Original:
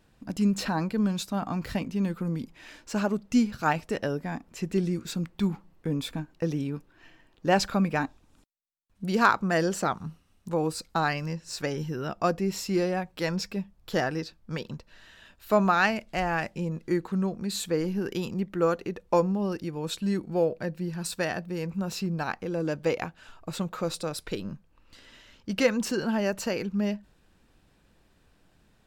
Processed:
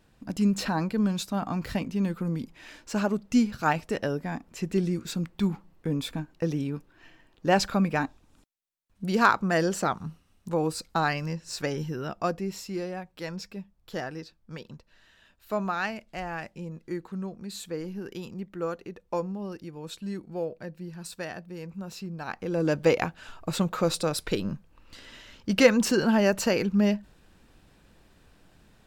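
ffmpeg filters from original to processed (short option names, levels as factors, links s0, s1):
-af "volume=4.22,afade=t=out:st=11.76:d=0.97:silence=0.421697,afade=t=in:st=22.21:d=0.53:silence=0.251189"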